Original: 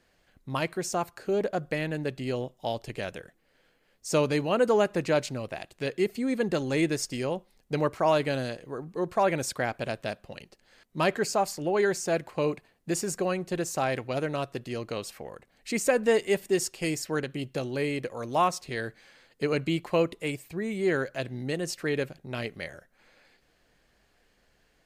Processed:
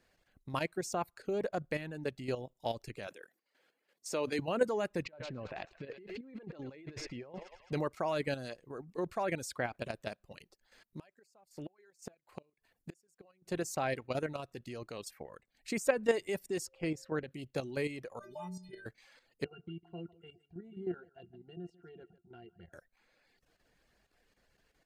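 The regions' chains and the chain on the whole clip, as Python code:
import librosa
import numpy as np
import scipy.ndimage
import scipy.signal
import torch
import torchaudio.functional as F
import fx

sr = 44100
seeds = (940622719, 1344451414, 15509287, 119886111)

y = fx.chain(x, sr, fx.highpass(hz=280.0, slope=12),
    fx.sustainer(db_per_s=150.0), at=(3.07, 4.39))
y = fx.chain(y, sr, fx.air_absorb(metres=220.0),
    fx.echo_thinned(ms=108, feedback_pct=71, hz=690.0, wet_db=-13.5),
    fx.over_compress(threshold_db=-38.0, ratio=-1.0), at=(5.05, 7.73))
y = fx.chain(y, sr, fx.gate_flip(shuts_db=-23.0, range_db=-31),
    fx.high_shelf(hz=9300.0, db=4.5), at=(10.27, 13.49))
y = fx.lowpass(y, sr, hz=1700.0, slope=6, at=(16.65, 17.3), fade=0.02)
y = fx.dmg_tone(y, sr, hz=530.0, level_db=-51.0, at=(16.65, 17.3), fade=0.02)
y = fx.chain(y, sr, fx.low_shelf(hz=300.0, db=9.5),
    fx.stiff_resonator(f0_hz=180.0, decay_s=0.75, stiffness=0.03),
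    fx.env_flatten(amount_pct=50), at=(18.19, 18.86))
y = fx.chain(y, sr, fx.octave_resonator(note='F', decay_s=0.11),
    fx.echo_single(ms=150, db=-12.5), at=(19.44, 22.73))
y = fx.dereverb_blind(y, sr, rt60_s=0.55)
y = fx.notch(y, sr, hz=3100.0, q=29.0)
y = fx.level_steps(y, sr, step_db=10)
y = y * 10.0 ** (-2.5 / 20.0)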